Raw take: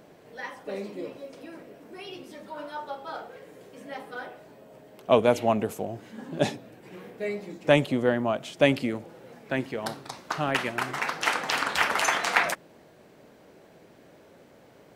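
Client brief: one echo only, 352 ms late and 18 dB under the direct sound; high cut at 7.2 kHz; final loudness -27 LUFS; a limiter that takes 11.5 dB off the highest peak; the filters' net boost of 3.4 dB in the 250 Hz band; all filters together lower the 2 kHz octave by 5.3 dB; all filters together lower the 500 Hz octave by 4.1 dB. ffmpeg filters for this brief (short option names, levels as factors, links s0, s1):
-af "lowpass=7200,equalizer=f=250:t=o:g=5.5,equalizer=f=500:t=o:g=-6,equalizer=f=2000:t=o:g=-6.5,alimiter=limit=0.126:level=0:latency=1,aecho=1:1:352:0.126,volume=1.88"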